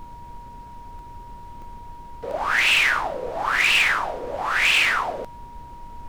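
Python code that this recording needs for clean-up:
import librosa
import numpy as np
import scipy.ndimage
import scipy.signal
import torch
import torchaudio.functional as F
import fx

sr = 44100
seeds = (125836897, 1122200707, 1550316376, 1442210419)

y = fx.fix_declip(x, sr, threshold_db=-12.5)
y = fx.notch(y, sr, hz=950.0, q=30.0)
y = fx.fix_interpolate(y, sr, at_s=(0.99, 1.62, 2.31), length_ms=1.2)
y = fx.noise_reduce(y, sr, print_start_s=0.43, print_end_s=0.93, reduce_db=27.0)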